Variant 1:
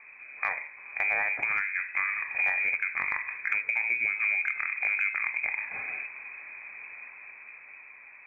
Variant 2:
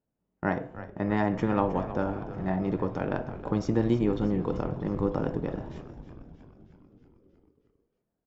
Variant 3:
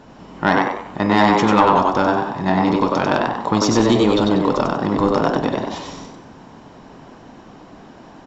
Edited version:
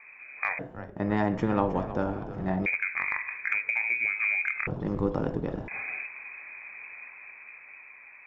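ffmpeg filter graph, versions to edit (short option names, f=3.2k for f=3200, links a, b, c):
-filter_complex "[1:a]asplit=2[a][b];[0:a]asplit=3[c][d][e];[c]atrim=end=0.592[f];[a]atrim=start=0.588:end=2.662[g];[d]atrim=start=2.658:end=4.672[h];[b]atrim=start=4.668:end=5.682[i];[e]atrim=start=5.678[j];[f][g]acrossfade=d=0.004:c1=hsin:c2=hsin[k];[k][h]acrossfade=d=0.004:c1=hsin:c2=hsin[l];[l][i]acrossfade=d=0.004:c1=hsin:c2=hsin[m];[m][j]acrossfade=d=0.004:c1=hsin:c2=hsin"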